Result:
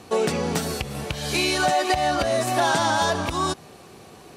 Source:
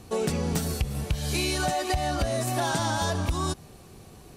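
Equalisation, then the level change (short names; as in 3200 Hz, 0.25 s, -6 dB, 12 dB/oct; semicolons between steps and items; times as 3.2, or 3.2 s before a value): HPF 410 Hz 6 dB/oct; high shelf 5500 Hz -7.5 dB; high shelf 11000 Hz -3.5 dB; +8.5 dB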